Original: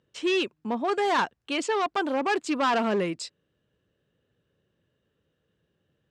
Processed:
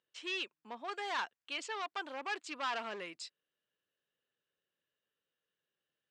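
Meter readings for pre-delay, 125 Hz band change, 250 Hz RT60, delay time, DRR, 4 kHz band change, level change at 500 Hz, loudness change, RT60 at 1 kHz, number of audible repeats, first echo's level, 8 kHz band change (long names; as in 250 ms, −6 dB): no reverb audible, below −25 dB, no reverb audible, no echo audible, no reverb audible, −8.0 dB, −18.5 dB, −13.5 dB, no reverb audible, no echo audible, no echo audible, −11.0 dB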